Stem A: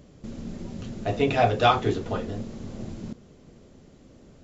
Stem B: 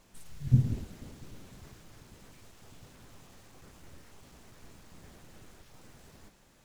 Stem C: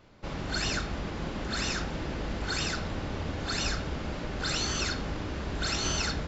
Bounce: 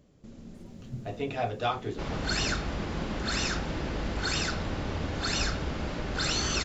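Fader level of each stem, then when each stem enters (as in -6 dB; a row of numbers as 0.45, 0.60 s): -10.0, -16.5, +1.5 dB; 0.00, 0.40, 1.75 s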